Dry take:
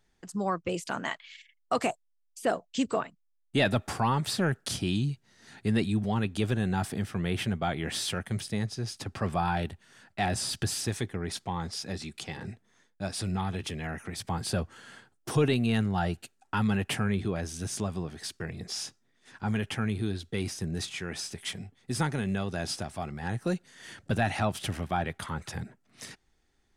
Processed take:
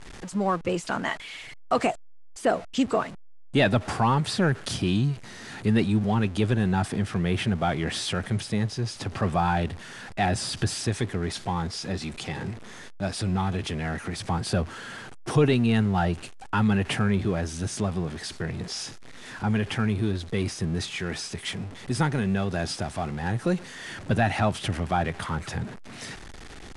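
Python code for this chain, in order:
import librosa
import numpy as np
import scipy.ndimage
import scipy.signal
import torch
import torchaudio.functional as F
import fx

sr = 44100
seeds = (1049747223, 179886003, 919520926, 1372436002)

y = x + 0.5 * 10.0 ** (-39.5 / 20.0) * np.sign(x)
y = scipy.signal.sosfilt(scipy.signal.butter(12, 11000.0, 'lowpass', fs=sr, output='sos'), y)
y = fx.high_shelf(y, sr, hz=4700.0, db=-7.5)
y = y * librosa.db_to_amplitude(4.0)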